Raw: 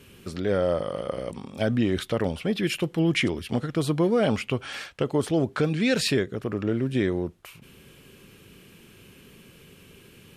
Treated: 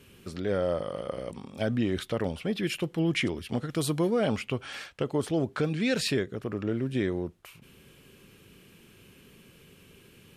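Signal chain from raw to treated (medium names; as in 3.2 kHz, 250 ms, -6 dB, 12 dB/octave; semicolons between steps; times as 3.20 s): 3.69–4.09 s: treble shelf 3.5 kHz -> 6.8 kHz +10.5 dB; trim -4 dB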